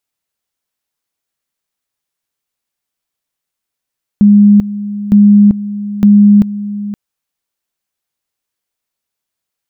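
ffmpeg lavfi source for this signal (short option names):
-f lavfi -i "aevalsrc='pow(10,(-2-15*gte(mod(t,0.91),0.39))/20)*sin(2*PI*205*t)':d=2.73:s=44100"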